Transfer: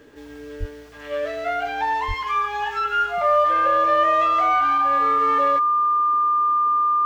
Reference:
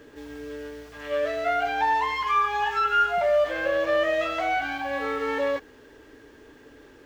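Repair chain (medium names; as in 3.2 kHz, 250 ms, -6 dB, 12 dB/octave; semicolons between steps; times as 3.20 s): band-stop 1.2 kHz, Q 30; de-plosive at 0.59/2.07 s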